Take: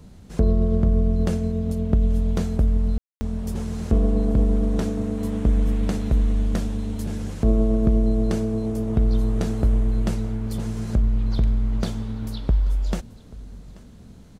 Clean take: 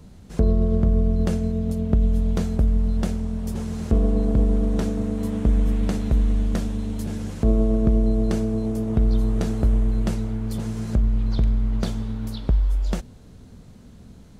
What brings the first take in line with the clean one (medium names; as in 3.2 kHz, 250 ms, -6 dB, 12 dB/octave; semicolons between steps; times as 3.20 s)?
room tone fill 2.98–3.21 s; inverse comb 834 ms -21.5 dB